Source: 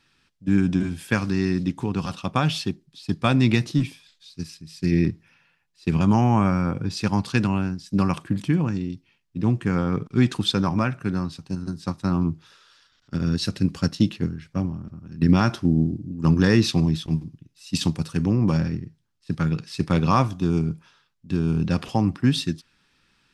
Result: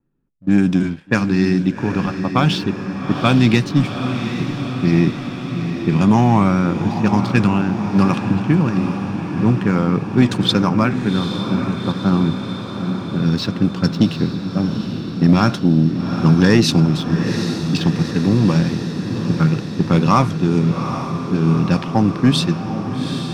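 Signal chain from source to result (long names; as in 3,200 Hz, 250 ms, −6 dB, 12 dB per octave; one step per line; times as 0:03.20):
low-pass that shuts in the quiet parts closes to 410 Hz, open at −16 dBFS
parametric band 80 Hz −14.5 dB 0.41 octaves
leveller curve on the samples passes 1
pitch vibrato 2 Hz 34 cents
feedback delay with all-pass diffusion 809 ms, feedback 69%, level −8 dB
level +3 dB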